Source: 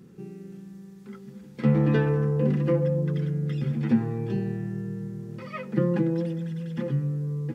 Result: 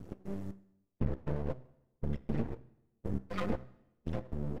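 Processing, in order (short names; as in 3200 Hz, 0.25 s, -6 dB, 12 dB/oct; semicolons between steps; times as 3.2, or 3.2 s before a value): octaver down 1 oct, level +1 dB; thin delay 0.233 s, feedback 45%, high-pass 3100 Hz, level -14.5 dB; step gate "x.xx...." 72 bpm -60 dB; time stretch by phase-locked vocoder 0.61×; low shelf 460 Hz +8 dB; compressor 6:1, threshold -24 dBFS, peak gain reduction 16 dB; low shelf 200 Hz -9.5 dB; resonator 65 Hz, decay 0.35 s, harmonics all, mix 40%; de-hum 124.9 Hz, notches 16; flange 1.9 Hz, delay 0.6 ms, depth 5.6 ms, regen +30%; half-wave rectifier; on a send at -23 dB: reverb RT60 0.95 s, pre-delay 71 ms; on the sum: gain +9.5 dB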